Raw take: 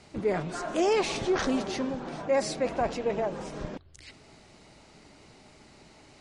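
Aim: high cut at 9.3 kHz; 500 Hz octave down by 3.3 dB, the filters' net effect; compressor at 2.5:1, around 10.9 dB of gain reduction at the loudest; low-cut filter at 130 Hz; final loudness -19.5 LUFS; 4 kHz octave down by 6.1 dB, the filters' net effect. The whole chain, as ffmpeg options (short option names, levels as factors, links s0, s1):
-af "highpass=130,lowpass=9300,equalizer=f=500:t=o:g=-4,equalizer=f=4000:t=o:g=-8,acompressor=threshold=0.00891:ratio=2.5,volume=11.9"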